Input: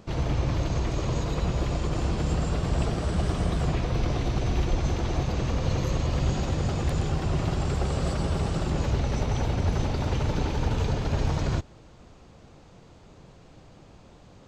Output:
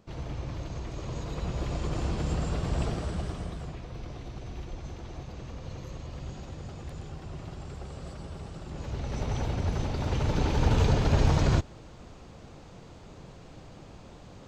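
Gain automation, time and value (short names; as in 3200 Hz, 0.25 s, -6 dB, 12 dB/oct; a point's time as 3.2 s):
0.87 s -10 dB
1.88 s -3.5 dB
2.91 s -3.5 dB
3.75 s -14 dB
8.63 s -14 dB
9.28 s -4 dB
9.91 s -4 dB
10.75 s +3 dB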